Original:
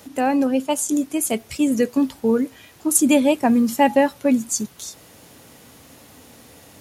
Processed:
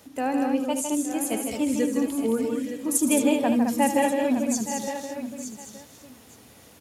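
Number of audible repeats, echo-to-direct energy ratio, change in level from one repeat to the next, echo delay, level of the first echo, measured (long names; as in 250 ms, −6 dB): 9, −1.0 dB, repeats not evenly spaced, 75 ms, −11.5 dB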